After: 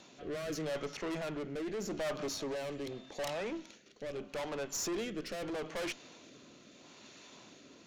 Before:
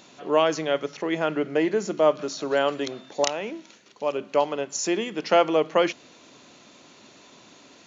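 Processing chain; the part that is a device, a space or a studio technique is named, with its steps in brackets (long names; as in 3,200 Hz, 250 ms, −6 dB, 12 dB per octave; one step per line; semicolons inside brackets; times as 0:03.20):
overdriven rotary cabinet (tube saturation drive 33 dB, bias 0.55; rotating-speaker cabinet horn 0.8 Hz)
0:02.22–0:03.38: notch filter 1,400 Hz, Q 11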